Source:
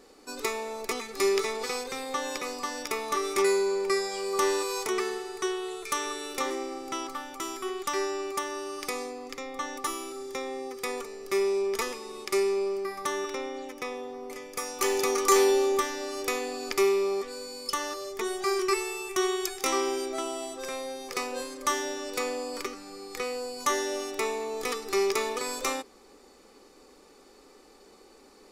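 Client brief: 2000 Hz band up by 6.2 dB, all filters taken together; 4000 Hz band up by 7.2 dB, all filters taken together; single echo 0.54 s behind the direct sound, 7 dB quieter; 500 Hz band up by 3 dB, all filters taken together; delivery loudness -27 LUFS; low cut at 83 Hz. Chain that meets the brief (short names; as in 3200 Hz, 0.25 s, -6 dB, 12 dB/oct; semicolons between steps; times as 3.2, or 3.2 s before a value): HPF 83 Hz; bell 500 Hz +4 dB; bell 2000 Hz +5 dB; bell 4000 Hz +8 dB; echo 0.54 s -7 dB; gain -1.5 dB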